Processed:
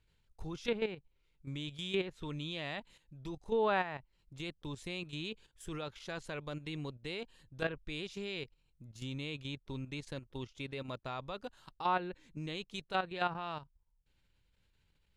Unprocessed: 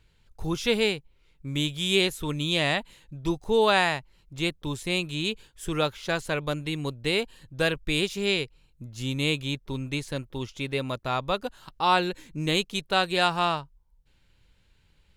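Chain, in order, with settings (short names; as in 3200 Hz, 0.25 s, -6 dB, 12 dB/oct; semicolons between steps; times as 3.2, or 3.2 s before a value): level quantiser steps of 11 dB; treble ducked by the level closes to 2000 Hz, closed at -24 dBFS; gain -7 dB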